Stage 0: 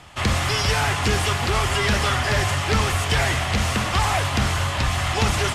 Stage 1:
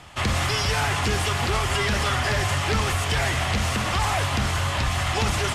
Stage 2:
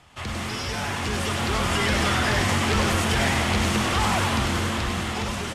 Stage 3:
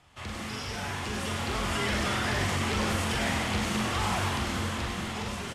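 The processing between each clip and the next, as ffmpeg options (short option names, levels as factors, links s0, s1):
-af "alimiter=limit=0.188:level=0:latency=1:release=71"
-filter_complex "[0:a]dynaudnorm=f=290:g=9:m=2.51,asplit=7[s0][s1][s2][s3][s4][s5][s6];[s1]adelay=99,afreqshift=130,volume=0.631[s7];[s2]adelay=198,afreqshift=260,volume=0.295[s8];[s3]adelay=297,afreqshift=390,volume=0.14[s9];[s4]adelay=396,afreqshift=520,volume=0.0653[s10];[s5]adelay=495,afreqshift=650,volume=0.0309[s11];[s6]adelay=594,afreqshift=780,volume=0.0145[s12];[s0][s7][s8][s9][s10][s11][s12]amix=inputs=7:normalize=0,volume=0.376"
-filter_complex "[0:a]asplit=2[s0][s1];[s1]adelay=42,volume=0.562[s2];[s0][s2]amix=inputs=2:normalize=0,volume=0.422"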